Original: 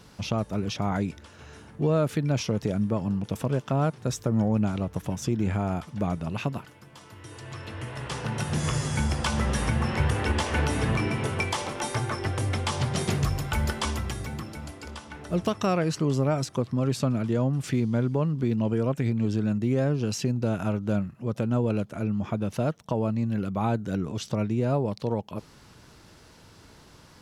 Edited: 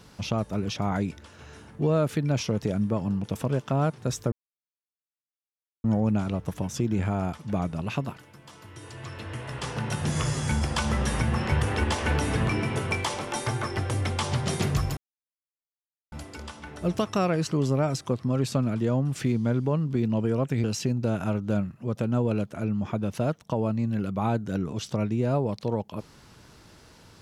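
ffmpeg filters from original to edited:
-filter_complex "[0:a]asplit=5[a][b][c][d][e];[a]atrim=end=4.32,asetpts=PTS-STARTPTS,afade=t=out:st=4.316:d=0.004:c=hsin,apad=pad_dur=1.52[f];[b]atrim=start=4.32:end=13.45,asetpts=PTS-STARTPTS,afade=t=in:d=0.004:c=hsin,afade=t=out:st=9.126:d=0.004:c=hsin[g];[c]atrim=start=13.45:end=14.6,asetpts=PTS-STARTPTS,volume=0[h];[d]atrim=start=14.6:end=19.122,asetpts=PTS-STARTPTS,afade=t=in:d=0.004:c=hsin[i];[e]atrim=start=20.028[j];[f][g][h][i]concat=n=4:v=0:a=1[k];[k][j]acrossfade=d=0.004:c1=hsin:c2=hsin"

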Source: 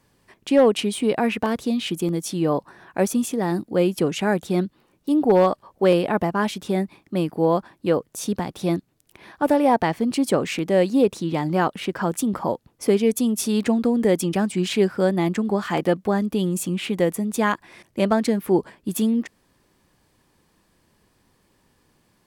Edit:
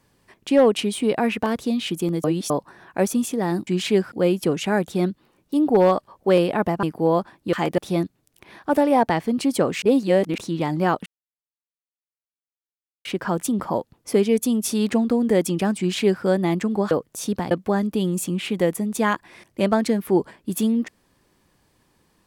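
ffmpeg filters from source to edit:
-filter_complex "[0:a]asplit=13[a][b][c][d][e][f][g][h][i][j][k][l][m];[a]atrim=end=2.242[n];[b]atrim=start=2.238:end=2.502,asetpts=PTS-STARTPTS,areverse[o];[c]atrim=start=2.498:end=3.672[p];[d]atrim=start=14.528:end=14.982[q];[e]atrim=start=3.668:end=6.382[r];[f]atrim=start=7.208:end=7.912[s];[g]atrim=start=15.648:end=15.902[t];[h]atrim=start=8.508:end=10.552[u];[i]atrim=start=10.548:end=11.112,asetpts=PTS-STARTPTS,areverse[v];[j]atrim=start=11.108:end=11.79,asetpts=PTS-STARTPTS,afade=t=out:st=0.678:d=0.004:c=hsin,apad=pad_dur=1.99[w];[k]atrim=start=11.79:end=15.652,asetpts=PTS-STARTPTS,afade=t=in:d=0.004:c=hsin[x];[l]atrim=start=7.908:end=8.512[y];[m]atrim=start=15.898[z];[n][o]acrossfade=d=0.004:c1=hsin:c2=hsin[aa];[aa][p]acrossfade=d=0.004:c1=hsin:c2=hsin[ab];[ab][q]acrossfade=d=0.004:c1=hsin:c2=hsin[ac];[ac][r]acrossfade=d=0.004:c1=hsin:c2=hsin[ad];[ad][s]acrossfade=d=0.004:c1=hsin:c2=hsin[ae];[ae][t]acrossfade=d=0.004:c1=hsin:c2=hsin[af];[af][u]acrossfade=d=0.004:c1=hsin:c2=hsin[ag];[ag][v]acrossfade=d=0.004:c1=hsin:c2=hsin[ah];[w][x]concat=n=2:v=0:a=1[ai];[ah][ai]acrossfade=d=0.004:c1=hsin:c2=hsin[aj];[aj][y]acrossfade=d=0.004:c1=hsin:c2=hsin[ak];[ak][z]acrossfade=d=0.004:c1=hsin:c2=hsin"

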